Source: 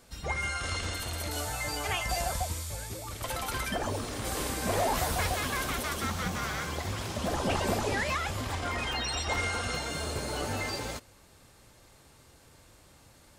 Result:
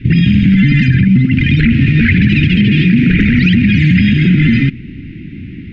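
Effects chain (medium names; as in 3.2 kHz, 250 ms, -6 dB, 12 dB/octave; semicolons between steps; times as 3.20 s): elliptic band-stop 130–980 Hz, stop band 50 dB; dynamic bell 160 Hz, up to -6 dB, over -52 dBFS, Q 1.9; speed mistake 33 rpm record played at 78 rpm; low-pass 2 kHz 24 dB/octave; peaking EQ 110 Hz +3.5 dB 1.8 oct; loudness maximiser +33.5 dB; trim -1 dB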